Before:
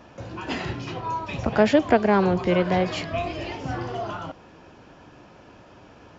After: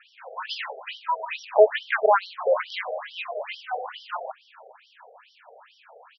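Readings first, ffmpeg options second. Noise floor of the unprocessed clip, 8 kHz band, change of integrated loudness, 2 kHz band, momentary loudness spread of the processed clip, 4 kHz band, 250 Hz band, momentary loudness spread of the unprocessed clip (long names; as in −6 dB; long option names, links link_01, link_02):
−50 dBFS, can't be measured, −2.0 dB, +0.5 dB, 15 LU, 0.0 dB, below −25 dB, 14 LU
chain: -af "aecho=1:1:359:0.0841,afftfilt=real='re*between(b*sr/1024,550*pow(4200/550,0.5+0.5*sin(2*PI*2.3*pts/sr))/1.41,550*pow(4200/550,0.5+0.5*sin(2*PI*2.3*pts/sr))*1.41)':imag='im*between(b*sr/1024,550*pow(4200/550,0.5+0.5*sin(2*PI*2.3*pts/sr))/1.41,550*pow(4200/550,0.5+0.5*sin(2*PI*2.3*pts/sr))*1.41)':win_size=1024:overlap=0.75,volume=6dB"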